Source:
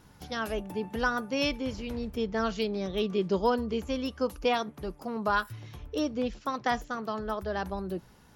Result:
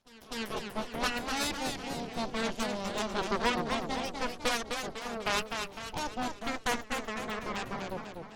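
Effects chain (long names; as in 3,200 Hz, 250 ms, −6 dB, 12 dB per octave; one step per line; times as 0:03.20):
harmonic generator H 3 −9 dB, 8 −15 dB, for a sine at −14 dBFS
backwards echo 250 ms −18 dB
feedback echo with a swinging delay time 250 ms, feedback 50%, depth 160 cents, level −5.5 dB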